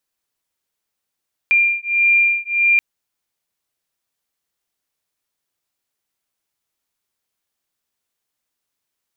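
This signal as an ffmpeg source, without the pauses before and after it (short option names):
-f lavfi -i "aevalsrc='0.158*(sin(2*PI*2390*t)+sin(2*PI*2391.6*t))':d=1.28:s=44100"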